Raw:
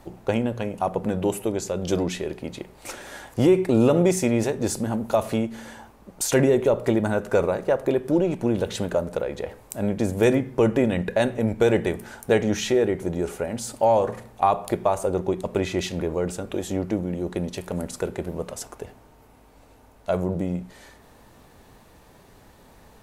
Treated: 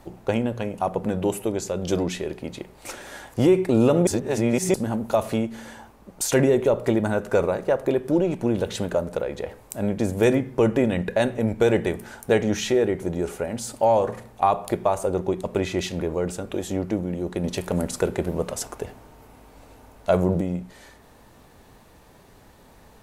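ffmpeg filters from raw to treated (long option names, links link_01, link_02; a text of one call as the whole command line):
ffmpeg -i in.wav -filter_complex "[0:a]asplit=5[link_01][link_02][link_03][link_04][link_05];[link_01]atrim=end=4.072[link_06];[link_02]atrim=start=4.068:end=4.742,asetpts=PTS-STARTPTS,areverse[link_07];[link_03]atrim=start=4.738:end=17.442[link_08];[link_04]atrim=start=17.438:end=20.412,asetpts=PTS-STARTPTS,volume=4.5dB[link_09];[link_05]atrim=start=20.408[link_10];[link_06][link_07]acrossfade=duration=0.004:curve1=hsin:curve2=hsin[link_11];[link_11][link_08]acrossfade=duration=0.004:curve1=hsin:curve2=hsin[link_12];[link_12][link_09]acrossfade=duration=0.004:curve1=hsin:curve2=hsin[link_13];[link_13][link_10]acrossfade=duration=0.004:curve1=hsin:curve2=hsin" out.wav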